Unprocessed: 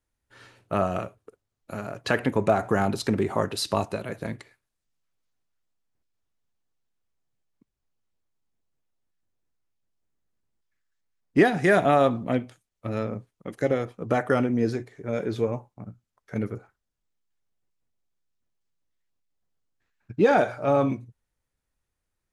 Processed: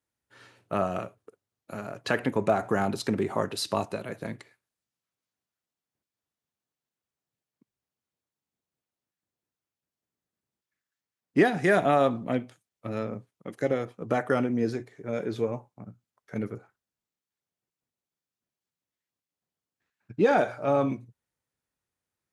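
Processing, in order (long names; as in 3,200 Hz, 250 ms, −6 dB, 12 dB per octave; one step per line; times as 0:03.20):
high-pass filter 110 Hz
level −2.5 dB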